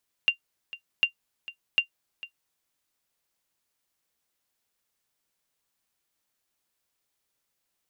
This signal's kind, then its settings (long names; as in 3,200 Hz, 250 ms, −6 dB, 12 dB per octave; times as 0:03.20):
ping with an echo 2,780 Hz, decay 0.10 s, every 0.75 s, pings 3, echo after 0.45 s, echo −17.5 dB −11.5 dBFS